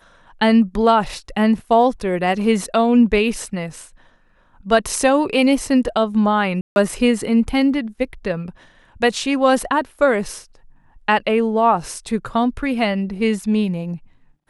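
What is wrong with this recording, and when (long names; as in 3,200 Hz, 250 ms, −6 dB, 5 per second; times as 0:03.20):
0:06.61–0:06.76: drop-out 151 ms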